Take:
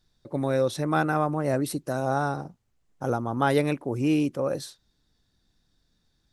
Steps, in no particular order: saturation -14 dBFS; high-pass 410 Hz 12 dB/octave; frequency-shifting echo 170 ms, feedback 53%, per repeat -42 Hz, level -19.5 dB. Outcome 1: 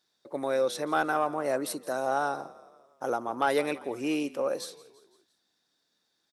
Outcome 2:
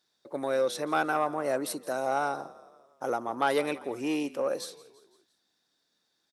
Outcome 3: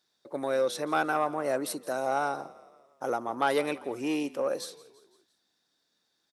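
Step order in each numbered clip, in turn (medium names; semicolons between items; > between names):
frequency-shifting echo > high-pass > saturation; frequency-shifting echo > saturation > high-pass; saturation > frequency-shifting echo > high-pass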